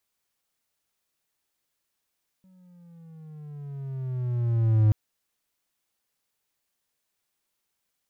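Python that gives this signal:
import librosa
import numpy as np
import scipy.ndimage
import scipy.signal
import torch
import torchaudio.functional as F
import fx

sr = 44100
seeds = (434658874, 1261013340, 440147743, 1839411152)

y = fx.riser_tone(sr, length_s=2.48, level_db=-13.0, wave='triangle', hz=189.0, rise_st=-10.0, swell_db=39)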